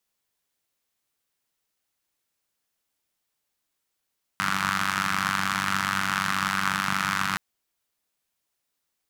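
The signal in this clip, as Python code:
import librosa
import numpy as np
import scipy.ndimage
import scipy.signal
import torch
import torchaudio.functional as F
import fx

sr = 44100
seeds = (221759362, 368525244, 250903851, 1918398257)

y = fx.engine_four(sr, seeds[0], length_s=2.97, rpm=2900, resonances_hz=(170.0, 1300.0))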